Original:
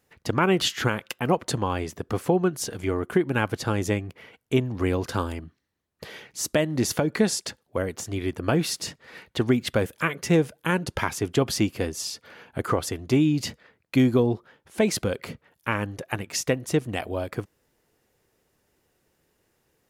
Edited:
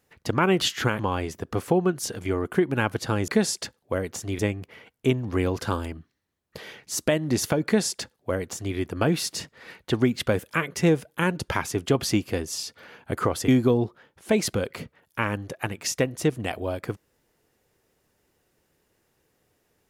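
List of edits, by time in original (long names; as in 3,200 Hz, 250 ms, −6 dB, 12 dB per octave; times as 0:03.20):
0:00.99–0:01.57: remove
0:07.12–0:08.23: duplicate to 0:03.86
0:12.95–0:13.97: remove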